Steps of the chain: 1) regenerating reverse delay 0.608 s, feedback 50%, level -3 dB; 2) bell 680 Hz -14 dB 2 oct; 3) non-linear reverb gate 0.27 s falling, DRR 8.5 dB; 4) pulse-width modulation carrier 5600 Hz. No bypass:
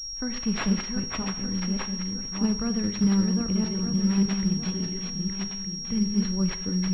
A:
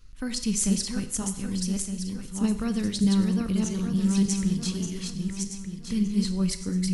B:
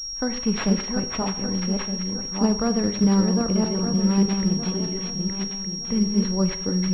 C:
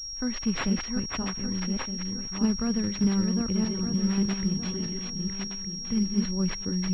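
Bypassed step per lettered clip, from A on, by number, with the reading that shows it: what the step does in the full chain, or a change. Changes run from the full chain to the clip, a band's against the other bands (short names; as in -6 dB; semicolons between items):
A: 4, 4 kHz band -5.5 dB; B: 2, 500 Hz band +6.0 dB; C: 3, loudness change -1.5 LU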